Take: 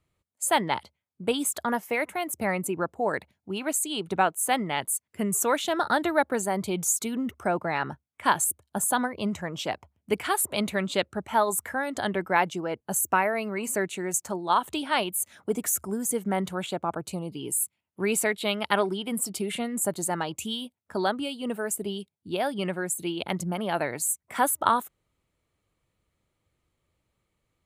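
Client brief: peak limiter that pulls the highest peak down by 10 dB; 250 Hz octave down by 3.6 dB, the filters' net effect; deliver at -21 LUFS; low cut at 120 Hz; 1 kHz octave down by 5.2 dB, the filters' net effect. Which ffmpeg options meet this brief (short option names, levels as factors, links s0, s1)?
-af "highpass=120,equalizer=f=250:t=o:g=-4,equalizer=f=1000:t=o:g=-6.5,volume=3.35,alimiter=limit=0.398:level=0:latency=1"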